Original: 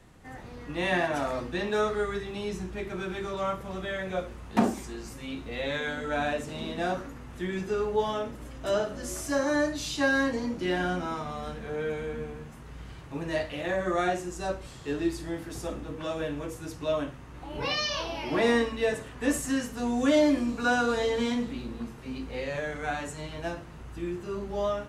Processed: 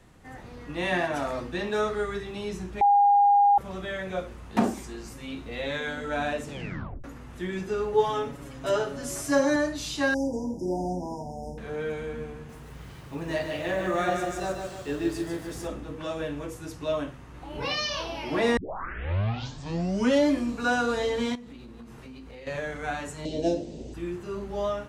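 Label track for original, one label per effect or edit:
2.810000	3.580000	bleep 811 Hz -15.5 dBFS
6.480000	6.480000	tape stop 0.56 s
7.920000	9.560000	comb 7.2 ms, depth 86%
10.140000	11.580000	brick-wall FIR band-stop 1000–4800 Hz
12.340000	15.670000	lo-fi delay 0.148 s, feedback 55%, word length 9-bit, level -5 dB
18.570000	18.570000	tape start 1.71 s
21.350000	22.470000	compressor 12:1, threshold -40 dBFS
23.250000	23.940000	EQ curve 130 Hz 0 dB, 260 Hz +13 dB, 570 Hz +12 dB, 850 Hz -4 dB, 1200 Hz -20 dB, 3700 Hz +6 dB, 5300 Hz +9 dB, 8000 Hz +6 dB, 12000 Hz -25 dB

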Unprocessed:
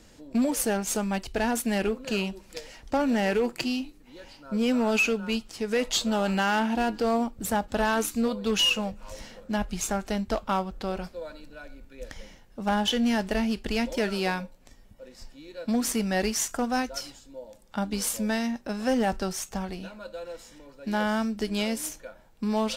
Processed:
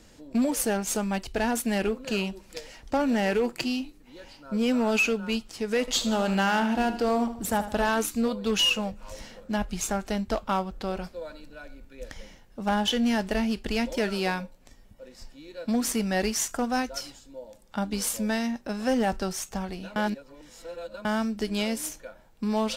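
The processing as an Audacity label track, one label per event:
5.800000	7.890000	feedback echo 77 ms, feedback 44%, level -12 dB
19.960000	21.050000	reverse

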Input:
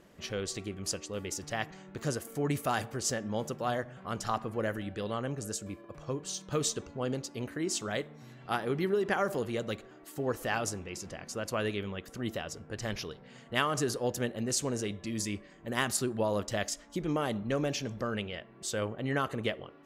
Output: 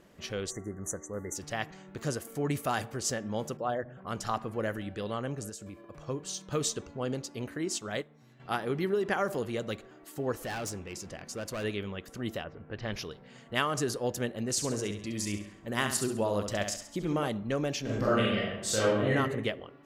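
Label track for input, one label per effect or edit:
0.510000	1.350000	spectral delete 2100–5800 Hz
3.570000	4.070000	formant sharpening exponent 1.5
5.490000	6.020000	compressor 4:1, threshold -40 dBFS
7.650000	8.400000	upward expander, over -48 dBFS
10.380000	11.640000	overloaded stage gain 32.5 dB
12.430000	12.920000	LPF 2000 Hz -> 4800 Hz 24 dB/oct
14.510000	17.280000	flutter echo walls apart 11.6 m, dies away in 0.51 s
17.810000	19.120000	reverb throw, RT60 0.98 s, DRR -7.5 dB

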